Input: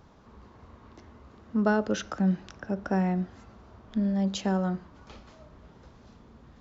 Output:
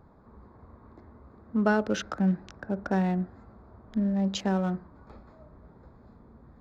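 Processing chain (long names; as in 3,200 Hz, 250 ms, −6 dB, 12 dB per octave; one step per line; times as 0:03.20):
adaptive Wiener filter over 15 samples
dynamic equaliser 2,400 Hz, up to +4 dB, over −47 dBFS, Q 0.89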